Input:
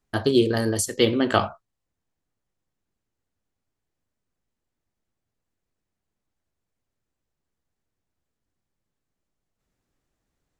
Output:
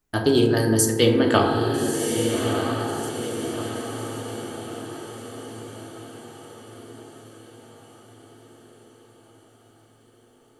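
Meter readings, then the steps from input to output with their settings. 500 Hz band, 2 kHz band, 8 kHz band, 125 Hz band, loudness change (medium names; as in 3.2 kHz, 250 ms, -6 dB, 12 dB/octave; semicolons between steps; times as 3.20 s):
+4.0 dB, +3.5 dB, +6.5 dB, +6.5 dB, -1.0 dB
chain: treble shelf 10 kHz +10 dB; on a send: echo that smears into a reverb 1287 ms, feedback 52%, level -5 dB; on the sum: FDN reverb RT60 1.8 s, low-frequency decay 1.35×, high-frequency decay 0.3×, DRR 2.5 dB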